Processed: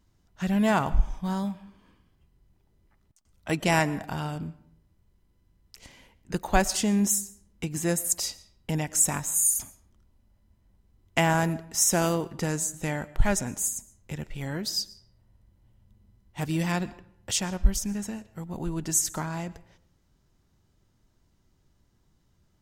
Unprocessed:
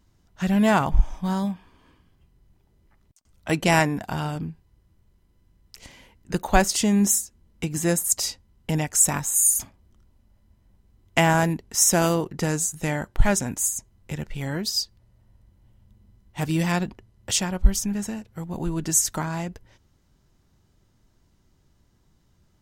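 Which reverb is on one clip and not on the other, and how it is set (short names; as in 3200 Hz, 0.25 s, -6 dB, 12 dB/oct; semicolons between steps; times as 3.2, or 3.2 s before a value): digital reverb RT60 0.67 s, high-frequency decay 0.7×, pre-delay 75 ms, DRR 19 dB; gain -4 dB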